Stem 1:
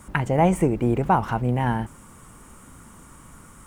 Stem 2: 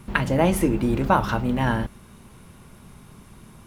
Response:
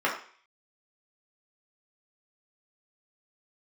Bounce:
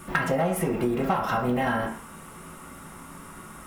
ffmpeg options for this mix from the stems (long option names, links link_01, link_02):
-filter_complex "[0:a]volume=-4.5dB,asplit=2[link_01][link_02];[link_02]volume=-8dB[link_03];[1:a]highshelf=frequency=7400:gain=11.5,asoftclip=type=hard:threshold=-14.5dB,volume=-5dB,asplit=2[link_04][link_05];[link_05]volume=-5dB[link_06];[2:a]atrim=start_sample=2205[link_07];[link_03][link_06]amix=inputs=2:normalize=0[link_08];[link_08][link_07]afir=irnorm=-1:irlink=0[link_09];[link_01][link_04][link_09]amix=inputs=3:normalize=0,acompressor=threshold=-21dB:ratio=12"